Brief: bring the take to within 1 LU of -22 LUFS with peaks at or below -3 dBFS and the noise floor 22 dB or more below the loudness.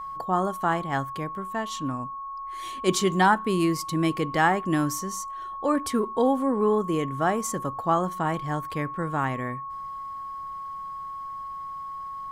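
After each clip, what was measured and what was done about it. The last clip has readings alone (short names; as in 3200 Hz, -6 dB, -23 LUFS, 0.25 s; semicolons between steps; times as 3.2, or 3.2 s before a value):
steady tone 1100 Hz; tone level -33 dBFS; loudness -27.0 LUFS; peak -7.5 dBFS; loudness target -22.0 LUFS
-> notch 1100 Hz, Q 30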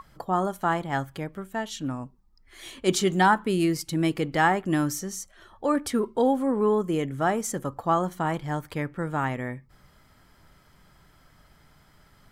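steady tone none; loudness -26.5 LUFS; peak -8.0 dBFS; loudness target -22.0 LUFS
-> gain +4.5 dB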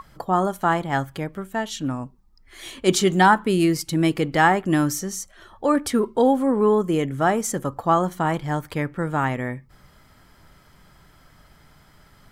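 loudness -22.0 LUFS; peak -3.5 dBFS; noise floor -55 dBFS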